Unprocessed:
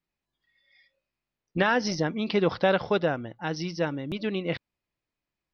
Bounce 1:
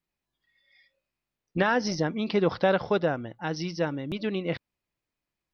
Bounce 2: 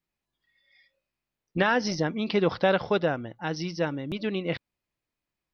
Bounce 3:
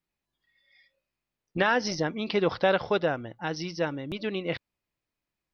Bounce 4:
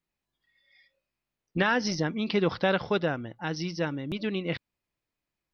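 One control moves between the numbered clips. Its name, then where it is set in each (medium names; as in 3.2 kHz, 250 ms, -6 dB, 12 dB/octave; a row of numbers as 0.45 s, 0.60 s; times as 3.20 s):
dynamic bell, frequency: 2.9 kHz, 9.1 kHz, 190 Hz, 630 Hz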